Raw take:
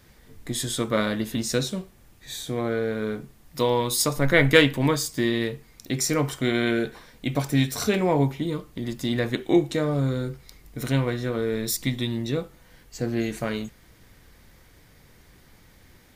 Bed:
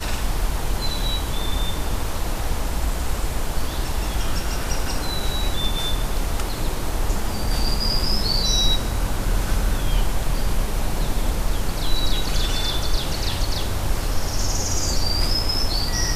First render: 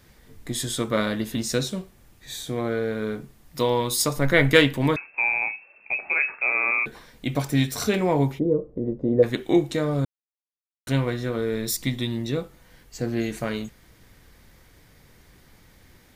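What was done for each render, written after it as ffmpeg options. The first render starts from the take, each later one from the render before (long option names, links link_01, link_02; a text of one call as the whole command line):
ffmpeg -i in.wav -filter_complex "[0:a]asettb=1/sr,asplit=3[link_01][link_02][link_03];[link_01]atrim=end=4.964[link_04];[link_02]atrim=start=4.96:end=6.86,asetpts=PTS-STARTPTS,afade=type=in:duration=0.004:curve=qsin,afade=type=out:start_time=1.896:duration=0.004:curve=qsin,lowpass=frequency=2300:width_type=q:width=0.5098,lowpass=frequency=2300:width_type=q:width=0.6013,lowpass=frequency=2300:width_type=q:width=0.9,lowpass=frequency=2300:width_type=q:width=2.563,afreqshift=-2700[link_05];[link_03]atrim=start=6.856[link_06];[link_04][link_05]acrossfade=duration=0.004:curve1=hsin:curve2=qsin[link_07];[link_07][link_06]acrossfade=duration=0.004:curve1=qsin:curve2=hsin,asplit=3[link_08][link_09][link_10];[link_08]afade=type=out:start_time=8.38:duration=0.02[link_11];[link_09]lowpass=frequency=490:width_type=q:width=4.5,afade=type=in:start_time=8.38:duration=0.02,afade=type=out:start_time=9.22:duration=0.02[link_12];[link_10]afade=type=in:start_time=9.22:duration=0.02[link_13];[link_11][link_12][link_13]amix=inputs=3:normalize=0,asplit=3[link_14][link_15][link_16];[link_14]atrim=end=10.05,asetpts=PTS-STARTPTS,afade=type=out:start_time=10.046:duration=0.004:curve=hsin[link_17];[link_15]atrim=start=10.05:end=10.87,asetpts=PTS-STARTPTS,volume=0[link_18];[link_16]atrim=start=10.87,asetpts=PTS-STARTPTS,afade=type=in:duration=0.004:curve=hsin[link_19];[link_17][link_18][link_19]concat=n=3:v=0:a=1" out.wav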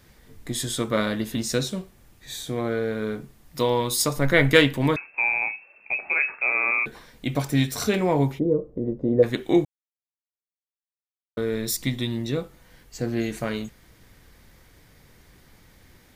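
ffmpeg -i in.wav -filter_complex "[0:a]asplit=3[link_01][link_02][link_03];[link_01]atrim=end=9.65,asetpts=PTS-STARTPTS,afade=type=out:start_time=9.646:duration=0.004:curve=hsin[link_04];[link_02]atrim=start=9.65:end=11.37,asetpts=PTS-STARTPTS,volume=0[link_05];[link_03]atrim=start=11.37,asetpts=PTS-STARTPTS,afade=type=in:duration=0.004:curve=hsin[link_06];[link_04][link_05][link_06]concat=n=3:v=0:a=1" out.wav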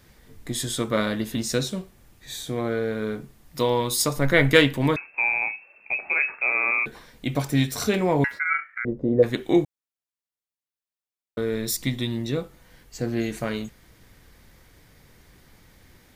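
ffmpeg -i in.wav -filter_complex "[0:a]asettb=1/sr,asplit=3[link_01][link_02][link_03];[link_01]atrim=end=8.244[link_04];[link_02]atrim=start=8.24:end=8.85,asetpts=PTS-STARTPTS,afade=type=in:duration=0.004:curve=qsin,afade=type=out:start_time=0.606:duration=0.004:curve=qsin,aeval=exprs='val(0)*sin(2*PI*1800*n/s)':channel_layout=same[link_05];[link_03]atrim=start=8.846[link_06];[link_04][link_05]acrossfade=duration=0.004:curve1=hsin:curve2=qsin[link_07];[link_07][link_06]acrossfade=duration=0.004:curve1=qsin:curve2=hsin" out.wav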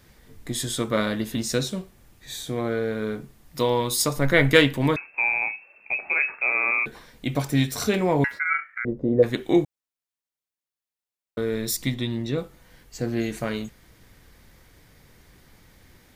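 ffmpeg -i in.wav -filter_complex "[0:a]asettb=1/sr,asplit=3[link_01][link_02][link_03];[link_01]atrim=end=11.944[link_04];[link_02]atrim=start=11.94:end=12.38,asetpts=PTS-STARTPTS,afade=type=in:duration=0.004:curve=qsin,afade=type=out:start_time=0.436:duration=0.004:curve=qsin,highshelf=frequency=8000:gain=-10.5[link_05];[link_03]atrim=start=12.376[link_06];[link_04][link_05]acrossfade=duration=0.004:curve1=hsin:curve2=qsin[link_07];[link_07][link_06]acrossfade=duration=0.004:curve1=qsin:curve2=hsin" out.wav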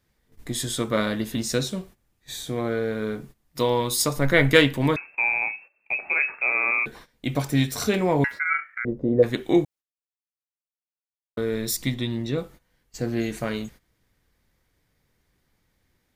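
ffmpeg -i in.wav -af "agate=range=-16dB:threshold=-44dB:ratio=16:detection=peak" out.wav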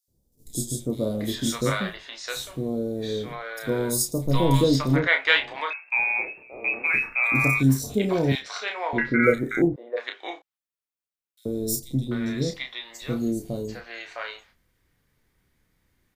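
ffmpeg -i in.wav -filter_complex "[0:a]asplit=2[link_01][link_02];[link_02]adelay=30,volume=-6dB[link_03];[link_01][link_03]amix=inputs=2:normalize=0,acrossover=split=640|5100[link_04][link_05][link_06];[link_04]adelay=80[link_07];[link_05]adelay=740[link_08];[link_07][link_08][link_06]amix=inputs=3:normalize=0" out.wav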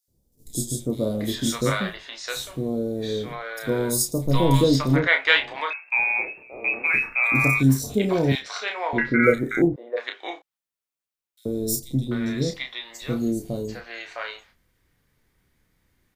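ffmpeg -i in.wav -af "volume=1.5dB" out.wav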